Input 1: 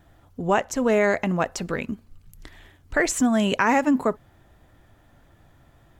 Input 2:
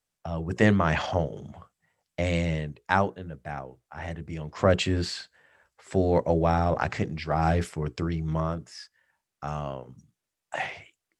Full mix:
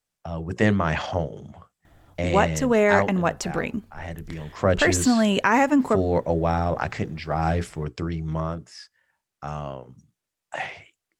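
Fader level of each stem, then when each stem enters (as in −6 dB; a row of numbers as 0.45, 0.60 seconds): +1.0, +0.5 decibels; 1.85, 0.00 seconds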